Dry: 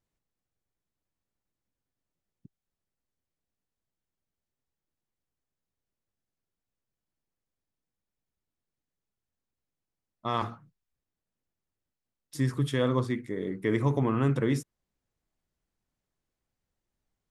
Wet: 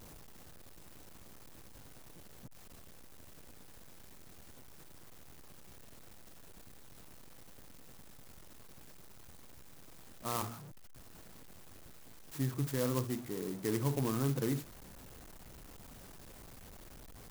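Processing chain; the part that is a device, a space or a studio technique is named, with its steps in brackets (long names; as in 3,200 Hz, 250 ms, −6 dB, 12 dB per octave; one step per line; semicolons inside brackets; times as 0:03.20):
early CD player with a faulty converter (converter with a step at zero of −37 dBFS; converter with an unsteady clock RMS 0.097 ms)
level −8 dB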